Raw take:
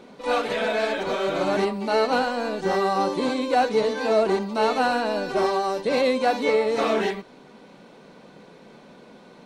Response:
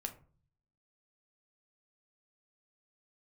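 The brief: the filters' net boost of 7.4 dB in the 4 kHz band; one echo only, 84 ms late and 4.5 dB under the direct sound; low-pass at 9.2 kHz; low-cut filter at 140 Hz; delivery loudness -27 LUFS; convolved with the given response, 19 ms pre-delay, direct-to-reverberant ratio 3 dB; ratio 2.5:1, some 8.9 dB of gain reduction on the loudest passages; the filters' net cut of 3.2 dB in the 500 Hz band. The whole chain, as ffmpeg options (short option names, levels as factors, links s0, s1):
-filter_complex "[0:a]highpass=140,lowpass=9200,equalizer=f=500:t=o:g=-4,equalizer=f=4000:t=o:g=8.5,acompressor=threshold=0.0282:ratio=2.5,aecho=1:1:84:0.596,asplit=2[s0][s1];[1:a]atrim=start_sample=2205,adelay=19[s2];[s1][s2]afir=irnorm=-1:irlink=0,volume=0.841[s3];[s0][s3]amix=inputs=2:normalize=0,volume=1.12"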